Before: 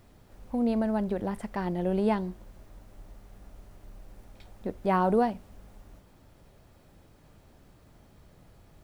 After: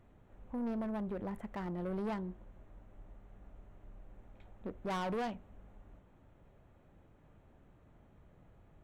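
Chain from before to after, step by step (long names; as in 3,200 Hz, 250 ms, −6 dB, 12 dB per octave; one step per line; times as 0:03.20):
adaptive Wiener filter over 9 samples
0:04.90–0:05.35: parametric band 3,400 Hz +10 dB 1.8 octaves
soft clipping −27.5 dBFS, distortion −8 dB
level −5.5 dB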